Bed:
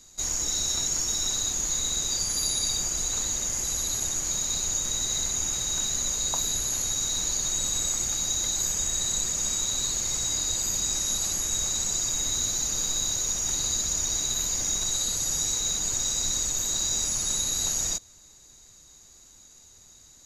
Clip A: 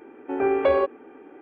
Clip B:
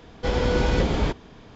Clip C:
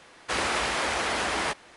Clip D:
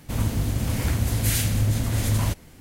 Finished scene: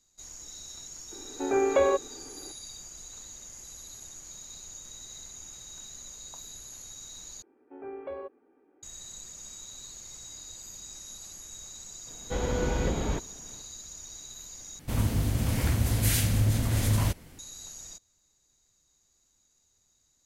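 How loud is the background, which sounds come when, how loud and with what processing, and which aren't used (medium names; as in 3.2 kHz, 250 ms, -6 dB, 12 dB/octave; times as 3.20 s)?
bed -17 dB
1.11 s: add A -3 dB
7.42 s: replace with A -18 dB + treble shelf 2 kHz -9.5 dB
12.07 s: add B -6.5 dB + treble shelf 4.2 kHz -11 dB
14.79 s: replace with D -2.5 dB
not used: C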